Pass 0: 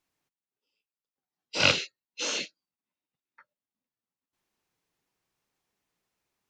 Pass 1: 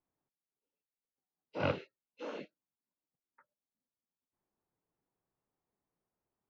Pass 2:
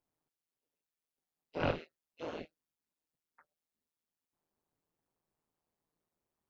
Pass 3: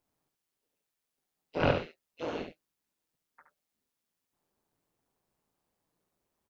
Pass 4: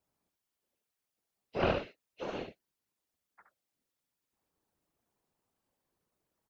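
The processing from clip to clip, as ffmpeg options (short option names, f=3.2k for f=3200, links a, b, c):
-af "lowpass=1k,volume=-3dB"
-af "tremolo=f=160:d=0.889,volume=4.5dB"
-af "aecho=1:1:71:0.447,volume=5.5dB"
-af "afftfilt=real='hypot(re,im)*cos(2*PI*random(0))':imag='hypot(re,im)*sin(2*PI*random(1))':win_size=512:overlap=0.75,volume=4dB"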